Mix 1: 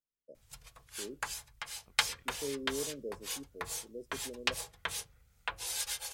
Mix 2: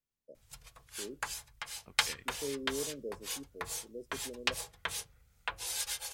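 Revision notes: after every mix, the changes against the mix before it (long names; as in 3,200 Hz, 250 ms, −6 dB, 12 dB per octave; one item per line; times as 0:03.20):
second voice +9.5 dB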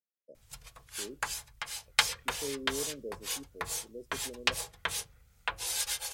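second voice: add formant filter e
background +3.5 dB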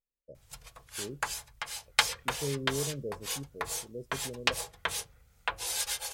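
first voice: remove high-pass filter 230 Hz 24 dB per octave
master: add parametric band 600 Hz +3.5 dB 1.9 octaves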